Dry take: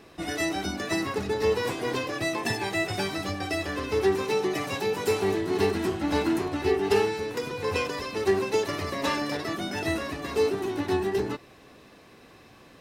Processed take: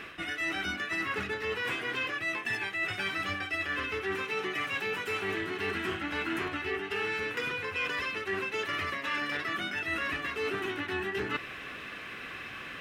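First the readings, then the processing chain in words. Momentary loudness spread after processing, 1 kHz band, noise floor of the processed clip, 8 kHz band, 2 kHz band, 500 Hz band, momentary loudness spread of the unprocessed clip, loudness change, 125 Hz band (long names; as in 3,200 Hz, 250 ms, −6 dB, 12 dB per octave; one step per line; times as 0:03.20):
4 LU, −5.0 dB, −43 dBFS, −11.0 dB, +3.0 dB, −11.0 dB, 6 LU, −5.0 dB, −10.0 dB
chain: flat-topped bell 2,000 Hz +14 dB
reversed playback
downward compressor 12 to 1, threshold −33 dBFS, peak gain reduction 20.5 dB
reversed playback
level +3 dB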